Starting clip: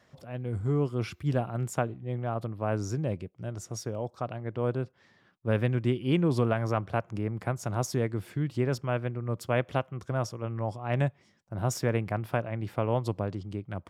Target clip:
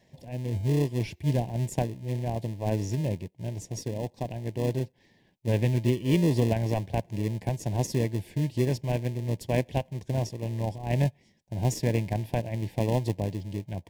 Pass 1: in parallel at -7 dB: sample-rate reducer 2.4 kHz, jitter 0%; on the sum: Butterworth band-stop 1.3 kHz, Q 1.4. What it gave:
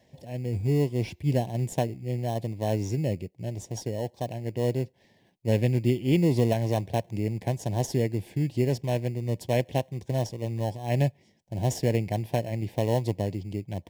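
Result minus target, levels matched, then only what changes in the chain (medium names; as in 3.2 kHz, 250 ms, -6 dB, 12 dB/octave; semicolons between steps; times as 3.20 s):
sample-rate reducer: distortion -10 dB
change: sample-rate reducer 760 Hz, jitter 0%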